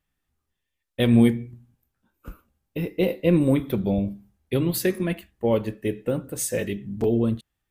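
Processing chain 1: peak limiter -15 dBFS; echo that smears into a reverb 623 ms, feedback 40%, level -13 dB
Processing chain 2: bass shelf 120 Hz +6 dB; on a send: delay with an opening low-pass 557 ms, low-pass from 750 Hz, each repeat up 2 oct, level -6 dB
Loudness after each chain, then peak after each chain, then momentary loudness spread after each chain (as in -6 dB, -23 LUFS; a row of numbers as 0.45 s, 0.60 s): -26.5 LUFS, -22.0 LUFS; -14.0 dBFS, -4.5 dBFS; 14 LU, 8 LU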